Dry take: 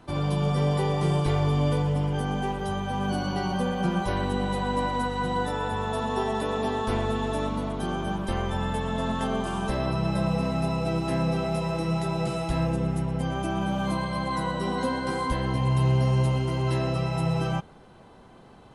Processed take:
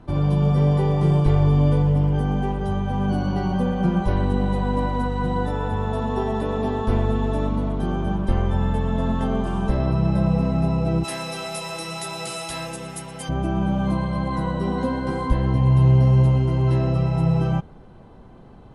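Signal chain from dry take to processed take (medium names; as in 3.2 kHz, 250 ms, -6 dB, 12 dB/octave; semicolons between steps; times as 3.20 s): tilt EQ -2.5 dB/octave, from 11.03 s +4 dB/octave, from 13.28 s -2.5 dB/octave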